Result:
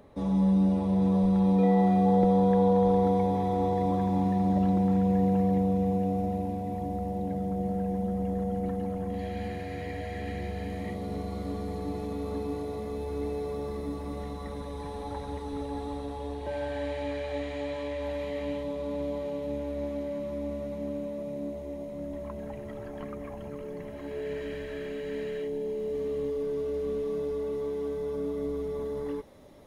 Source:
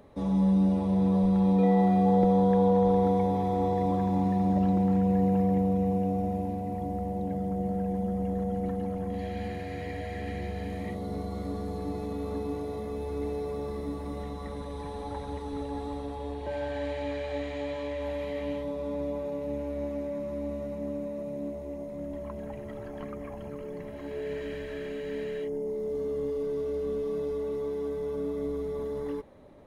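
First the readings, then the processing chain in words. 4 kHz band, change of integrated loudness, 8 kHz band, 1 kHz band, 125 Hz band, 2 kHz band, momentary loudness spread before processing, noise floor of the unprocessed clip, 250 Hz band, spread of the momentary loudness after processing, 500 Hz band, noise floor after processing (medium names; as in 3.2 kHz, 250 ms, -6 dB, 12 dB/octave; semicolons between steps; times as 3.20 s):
+1.0 dB, 0.0 dB, no reading, 0.0 dB, 0.0 dB, 0.0 dB, 15 LU, -39 dBFS, 0.0 dB, 15 LU, 0.0 dB, -39 dBFS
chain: feedback echo behind a high-pass 843 ms, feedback 62%, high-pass 3.3 kHz, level -6.5 dB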